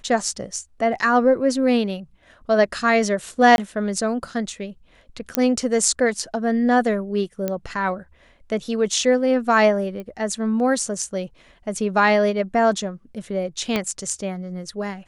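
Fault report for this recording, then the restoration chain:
3.56–3.58 gap 21 ms
5.35 pop -3 dBFS
7.48 pop -11 dBFS
10 pop -22 dBFS
13.76 pop -8 dBFS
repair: de-click; interpolate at 3.56, 21 ms

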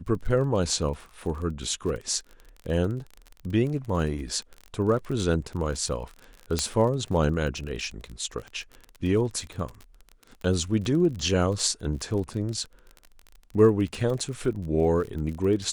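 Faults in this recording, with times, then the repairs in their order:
crackle 34/s -33 dBFS
6.59 pop -10 dBFS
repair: de-click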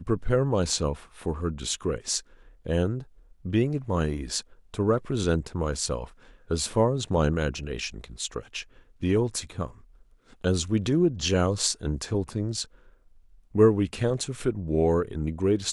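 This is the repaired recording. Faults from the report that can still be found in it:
none

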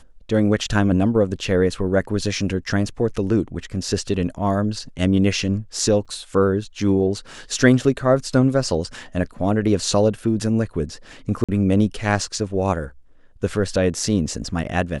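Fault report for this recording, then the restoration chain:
6.05–6.06 gap 5.5 ms
11.44–11.49 gap 46 ms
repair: interpolate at 6.05, 5.5 ms; interpolate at 11.44, 46 ms

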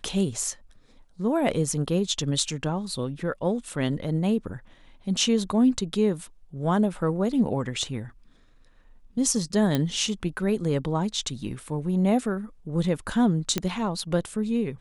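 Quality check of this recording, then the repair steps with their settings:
9.75 pop -11 dBFS
13.58 pop -10 dBFS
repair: de-click

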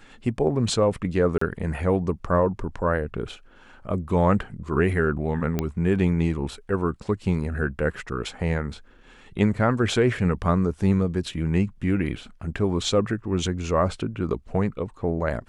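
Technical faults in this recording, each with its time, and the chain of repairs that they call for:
1.38–1.41 gap 34 ms
5.59 pop -11 dBFS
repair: de-click; interpolate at 1.38, 34 ms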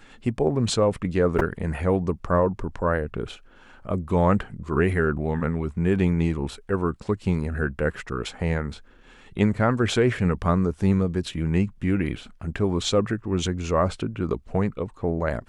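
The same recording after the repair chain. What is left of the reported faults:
none

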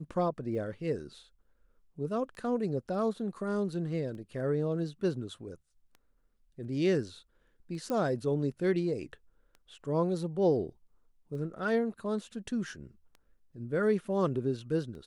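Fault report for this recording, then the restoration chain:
tick 33 1/3 rpm -36 dBFS
7.9 pop -22 dBFS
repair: de-click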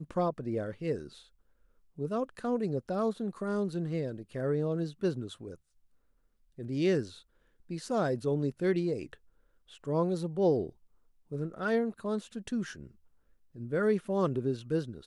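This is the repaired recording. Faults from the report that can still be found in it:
none

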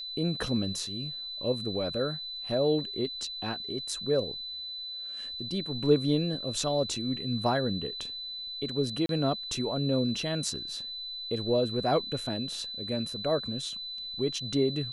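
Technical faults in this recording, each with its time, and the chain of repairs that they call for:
tone 4000 Hz -36 dBFS
9.06–9.09 gap 32 ms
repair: notch 4000 Hz, Q 30; interpolate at 9.06, 32 ms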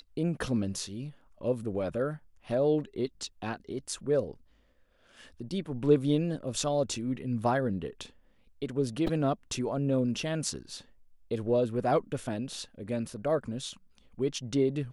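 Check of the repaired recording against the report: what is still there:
none

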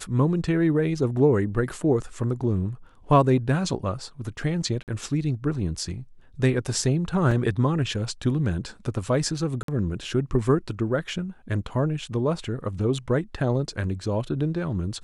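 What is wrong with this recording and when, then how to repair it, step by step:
4.83–4.88 gap 48 ms
7.31 gap 4.6 ms
9.63–9.68 gap 53 ms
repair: interpolate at 4.83, 48 ms; interpolate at 7.31, 4.6 ms; interpolate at 9.63, 53 ms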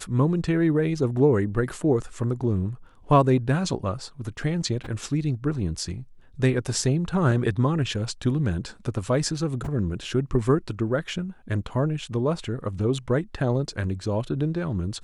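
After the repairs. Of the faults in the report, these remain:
none

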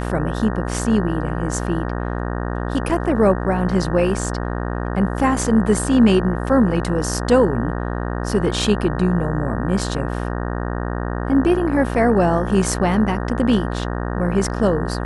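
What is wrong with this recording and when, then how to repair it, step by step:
buzz 60 Hz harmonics 31 -24 dBFS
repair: de-hum 60 Hz, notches 31

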